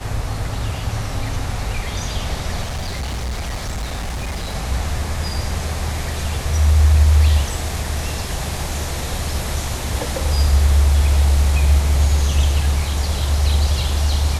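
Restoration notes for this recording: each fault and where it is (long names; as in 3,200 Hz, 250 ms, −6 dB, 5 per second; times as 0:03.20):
0:02.62–0:04.55: clipping −21 dBFS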